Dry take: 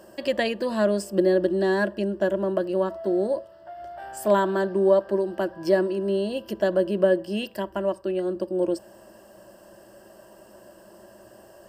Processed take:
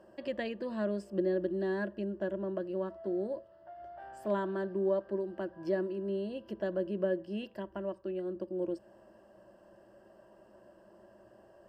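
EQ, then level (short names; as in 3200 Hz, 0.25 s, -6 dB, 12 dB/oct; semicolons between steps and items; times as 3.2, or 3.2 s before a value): high shelf 3600 Hz -12 dB; high shelf 7600 Hz -9.5 dB; dynamic EQ 800 Hz, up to -5 dB, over -35 dBFS, Q 0.95; -8.5 dB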